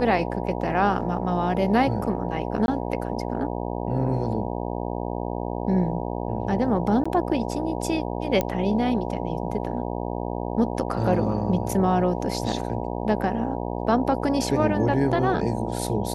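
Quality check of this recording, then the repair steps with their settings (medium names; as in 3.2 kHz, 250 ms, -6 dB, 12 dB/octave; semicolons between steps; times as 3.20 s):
buzz 60 Hz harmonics 16 -29 dBFS
2.66–2.68 s: dropout 21 ms
7.04–7.05 s: dropout 15 ms
8.41 s: pop -10 dBFS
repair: de-click; de-hum 60 Hz, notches 16; interpolate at 2.66 s, 21 ms; interpolate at 7.04 s, 15 ms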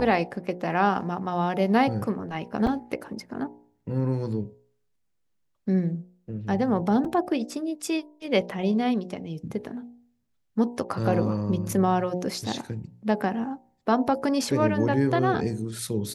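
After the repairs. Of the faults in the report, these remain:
nothing left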